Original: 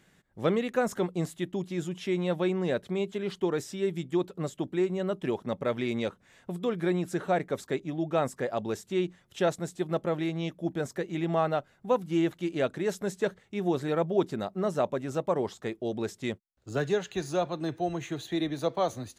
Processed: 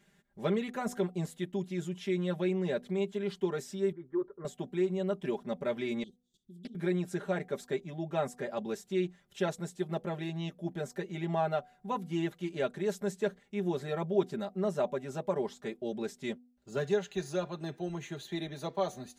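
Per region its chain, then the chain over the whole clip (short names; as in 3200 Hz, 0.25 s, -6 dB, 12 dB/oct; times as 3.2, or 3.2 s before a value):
3.92–4.45 LPF 1900 Hz 24 dB/oct + fixed phaser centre 710 Hz, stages 6
6.03–6.75 Chebyshev band-stop 370–3300 Hz, order 5 + level quantiser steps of 16 dB + Doppler distortion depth 0.36 ms
whole clip: notch 1200 Hz, Q 20; comb 5 ms, depth 82%; de-hum 245.8 Hz, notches 3; gain -6.5 dB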